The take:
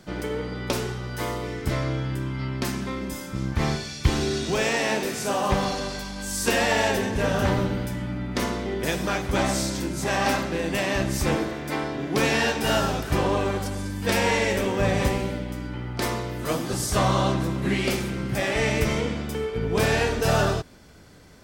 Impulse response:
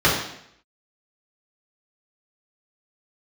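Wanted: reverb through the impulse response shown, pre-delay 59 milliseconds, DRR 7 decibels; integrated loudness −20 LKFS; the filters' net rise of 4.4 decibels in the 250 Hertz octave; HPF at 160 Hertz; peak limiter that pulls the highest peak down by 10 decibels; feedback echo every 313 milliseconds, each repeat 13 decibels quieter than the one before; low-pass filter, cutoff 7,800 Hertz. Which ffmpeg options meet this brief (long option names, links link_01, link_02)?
-filter_complex "[0:a]highpass=160,lowpass=7800,equalizer=frequency=250:width_type=o:gain=7,alimiter=limit=-16.5dB:level=0:latency=1,aecho=1:1:313|626|939:0.224|0.0493|0.0108,asplit=2[link_01][link_02];[1:a]atrim=start_sample=2205,adelay=59[link_03];[link_02][link_03]afir=irnorm=-1:irlink=0,volume=-28.5dB[link_04];[link_01][link_04]amix=inputs=2:normalize=0,volume=5.5dB"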